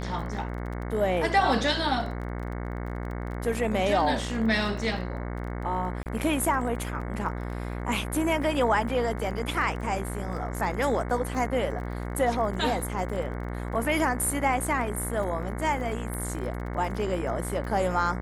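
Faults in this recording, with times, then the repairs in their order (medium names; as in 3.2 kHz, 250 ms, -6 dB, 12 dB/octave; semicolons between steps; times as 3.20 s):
buzz 60 Hz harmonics 37 -33 dBFS
crackle 24 per s -36 dBFS
6.03–6.06 s: dropout 29 ms
16.14 s: pop -22 dBFS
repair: de-click; de-hum 60 Hz, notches 37; interpolate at 6.03 s, 29 ms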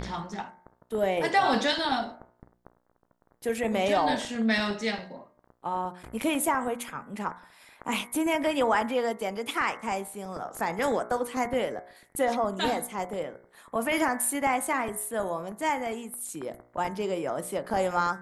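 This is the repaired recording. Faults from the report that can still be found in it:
16.14 s: pop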